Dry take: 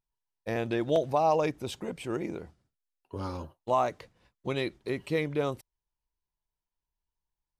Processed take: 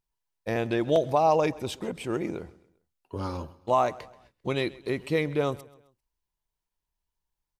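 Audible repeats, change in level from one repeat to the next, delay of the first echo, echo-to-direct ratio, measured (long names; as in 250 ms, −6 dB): 2, −7.5 dB, 132 ms, −20.0 dB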